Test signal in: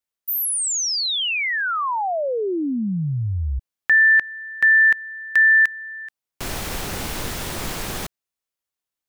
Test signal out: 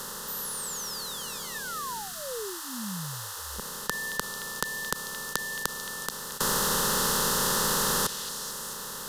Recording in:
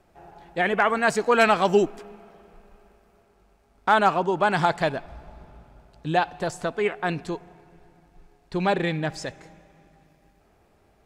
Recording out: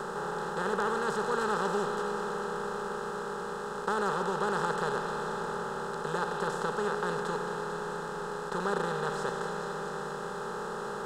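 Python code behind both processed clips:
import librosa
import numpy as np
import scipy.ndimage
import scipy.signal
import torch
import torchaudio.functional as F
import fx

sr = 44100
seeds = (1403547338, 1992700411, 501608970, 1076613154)

p1 = fx.bin_compress(x, sr, power=0.2)
p2 = fx.fixed_phaser(p1, sr, hz=460.0, stages=8)
p3 = p2 + fx.echo_stepped(p2, sr, ms=222, hz=2900.0, octaves=0.7, feedback_pct=70, wet_db=-5.5, dry=0)
y = p3 * 10.0 ** (-15.0 / 20.0)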